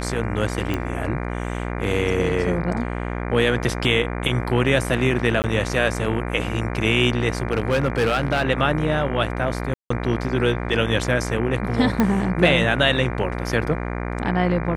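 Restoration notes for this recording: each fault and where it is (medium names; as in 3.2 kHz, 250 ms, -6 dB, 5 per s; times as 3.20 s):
buzz 60 Hz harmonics 40 -27 dBFS
0.74 s: pop -11 dBFS
5.42–5.44 s: dropout 19 ms
7.52–8.43 s: clipped -14.5 dBFS
9.74–9.90 s: dropout 164 ms
12.00 s: pop -7 dBFS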